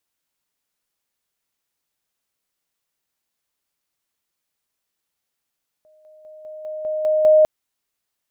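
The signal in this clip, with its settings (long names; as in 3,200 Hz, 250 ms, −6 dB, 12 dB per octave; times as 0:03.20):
level staircase 619 Hz −51 dBFS, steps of 6 dB, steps 8, 0.20 s 0.00 s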